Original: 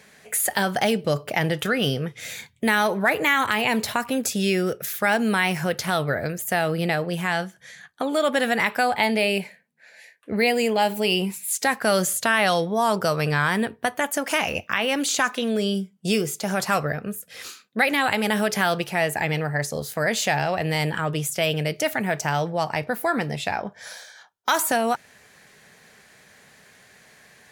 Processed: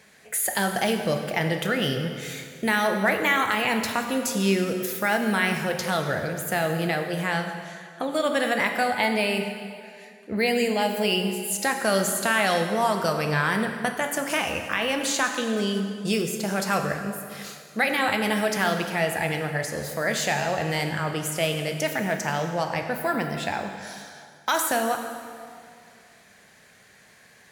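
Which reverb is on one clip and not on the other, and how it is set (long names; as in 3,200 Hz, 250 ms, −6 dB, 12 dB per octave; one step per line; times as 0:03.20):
dense smooth reverb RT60 2.2 s, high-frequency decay 0.8×, DRR 4.5 dB
level −3 dB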